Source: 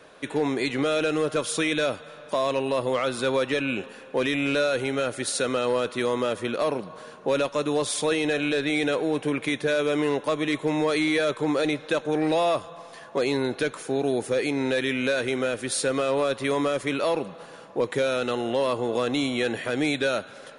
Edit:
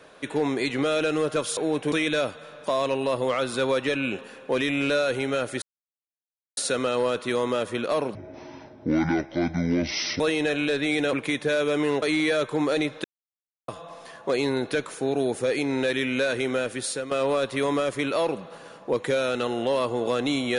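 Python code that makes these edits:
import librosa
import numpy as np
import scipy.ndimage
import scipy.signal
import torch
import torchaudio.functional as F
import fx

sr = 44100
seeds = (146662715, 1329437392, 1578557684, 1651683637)

y = fx.edit(x, sr, fx.insert_silence(at_s=5.27, length_s=0.95),
    fx.speed_span(start_s=6.85, length_s=1.19, speed=0.58),
    fx.move(start_s=8.97, length_s=0.35, to_s=1.57),
    fx.cut(start_s=10.21, length_s=0.69),
    fx.silence(start_s=11.92, length_s=0.64),
    fx.fade_out_to(start_s=15.46, length_s=0.53, curve='qsin', floor_db=-12.0), tone=tone)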